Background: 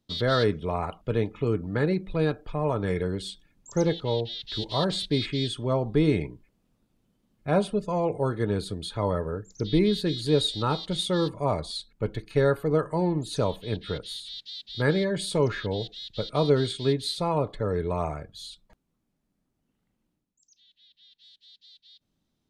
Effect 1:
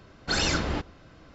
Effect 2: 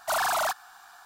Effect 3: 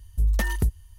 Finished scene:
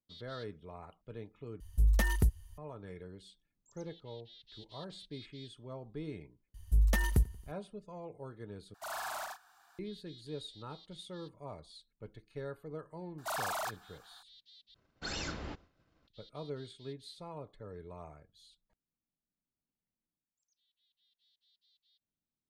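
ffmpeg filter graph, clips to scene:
ffmpeg -i bed.wav -i cue0.wav -i cue1.wav -i cue2.wav -filter_complex "[3:a]asplit=2[link_01][link_02];[2:a]asplit=2[link_03][link_04];[0:a]volume=-20dB[link_05];[link_02]aecho=1:1:91|182|273:0.0708|0.0368|0.0191[link_06];[link_03]aecho=1:1:72.89|107.9:0.794|0.355[link_07];[1:a]agate=range=-33dB:threshold=-46dB:ratio=3:release=100:detection=peak[link_08];[link_05]asplit=4[link_09][link_10][link_11][link_12];[link_09]atrim=end=1.604[link_13];[link_01]atrim=end=0.98,asetpts=PTS-STARTPTS,volume=-4.5dB[link_14];[link_10]atrim=start=2.576:end=8.744[link_15];[link_07]atrim=end=1.05,asetpts=PTS-STARTPTS,volume=-16dB[link_16];[link_11]atrim=start=9.786:end=14.744[link_17];[link_08]atrim=end=1.34,asetpts=PTS-STARTPTS,volume=-13.5dB[link_18];[link_12]atrim=start=16.076[link_19];[link_06]atrim=end=0.98,asetpts=PTS-STARTPTS,volume=-4.5dB,afade=type=in:duration=0.004:curve=hsin,afade=type=out:start_time=0.976:duration=0.004:curve=hsin,adelay=6540[link_20];[link_04]atrim=end=1.05,asetpts=PTS-STARTPTS,volume=-10.5dB,afade=type=in:duration=0.004:curve=hsin,afade=type=out:start_time=1.046:duration=0.004:curve=hsin,adelay=13180[link_21];[link_13][link_14]acrossfade=duration=0.004:curve1=hsin:curve2=hsin[link_22];[link_22][link_15]acrossfade=duration=0.004:curve1=hsin:curve2=hsin[link_23];[link_23][link_16]acrossfade=duration=0.004:curve1=hsin:curve2=hsin[link_24];[link_24][link_17]acrossfade=duration=0.004:curve1=hsin:curve2=hsin[link_25];[link_25][link_18]acrossfade=duration=0.004:curve1=hsin:curve2=hsin[link_26];[link_26][link_19]acrossfade=duration=0.004:curve1=hsin:curve2=hsin[link_27];[link_27][link_20][link_21]amix=inputs=3:normalize=0" out.wav

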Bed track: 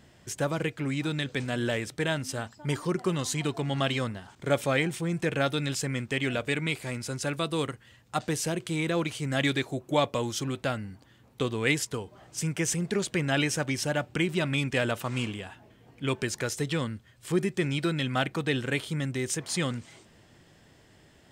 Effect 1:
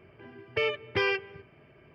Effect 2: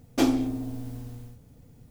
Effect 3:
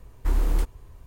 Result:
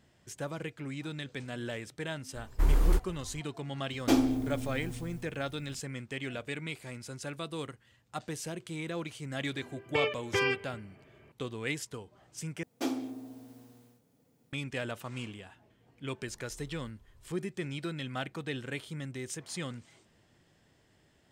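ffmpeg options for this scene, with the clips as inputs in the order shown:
ffmpeg -i bed.wav -i cue0.wav -i cue1.wav -i cue2.wav -filter_complex "[3:a]asplit=2[link_01][link_02];[2:a]asplit=2[link_03][link_04];[0:a]volume=-9dB[link_05];[link_04]highpass=240[link_06];[link_02]acompressor=threshold=-38dB:ratio=6:attack=3.2:release=140:knee=1:detection=peak[link_07];[link_05]asplit=2[link_08][link_09];[link_08]atrim=end=12.634[link_10];[link_06]atrim=end=1.9,asetpts=PTS-STARTPTS,volume=-9dB[link_11];[link_09]atrim=start=14.526[link_12];[link_01]atrim=end=1.06,asetpts=PTS-STARTPTS,volume=-2dB,afade=type=in:duration=0.004:curve=hsin,afade=type=out:start_time=1.056:duration=0.004:curve=hsin,adelay=2340[link_13];[link_03]atrim=end=1.9,asetpts=PTS-STARTPTS,volume=-2.5dB,afade=type=in:duration=0.004:curve=hsin,afade=type=out:start_time=1.896:duration=0.004:curve=hsin,adelay=3900[link_14];[1:a]atrim=end=1.94,asetpts=PTS-STARTPTS,volume=-2dB,afade=type=in:duration=0.004:curve=hsin,afade=type=out:start_time=1.936:duration=0.004:curve=hsin,adelay=413658S[link_15];[link_07]atrim=end=1.06,asetpts=PTS-STARTPTS,volume=-14dB,afade=type=in:duration=0.004:curve=hsin,afade=type=out:start_time=1.056:duration=0.004:curve=hsin,adelay=16260[link_16];[link_10][link_11]acrossfade=duration=0.004:curve1=hsin:curve2=hsin[link_17];[link_17][link_12]acrossfade=duration=0.004:curve1=hsin:curve2=hsin[link_18];[link_18][link_13][link_14][link_15][link_16]amix=inputs=5:normalize=0" out.wav

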